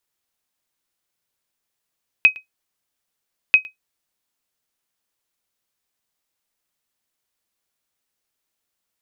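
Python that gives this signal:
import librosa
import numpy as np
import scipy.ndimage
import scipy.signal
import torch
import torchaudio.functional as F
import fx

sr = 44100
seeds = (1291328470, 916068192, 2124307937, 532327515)

y = fx.sonar_ping(sr, hz=2530.0, decay_s=0.13, every_s=1.29, pings=2, echo_s=0.11, echo_db=-24.0, level_db=-2.5)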